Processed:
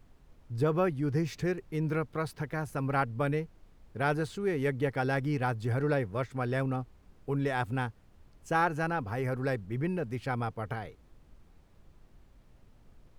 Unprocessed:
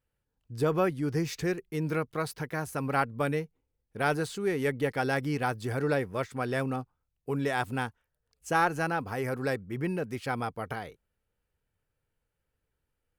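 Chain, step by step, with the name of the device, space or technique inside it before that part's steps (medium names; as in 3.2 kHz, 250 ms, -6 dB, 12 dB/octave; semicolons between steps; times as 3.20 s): car interior (peaking EQ 110 Hz +6.5 dB 0.74 oct; treble shelf 4.3 kHz -8 dB; brown noise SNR 23 dB); trim -1.5 dB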